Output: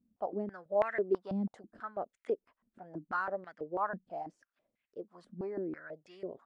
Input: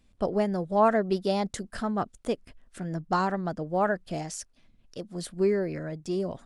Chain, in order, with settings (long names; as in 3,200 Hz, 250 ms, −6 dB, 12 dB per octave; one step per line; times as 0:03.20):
band-pass on a step sequencer 6.1 Hz 220–2,000 Hz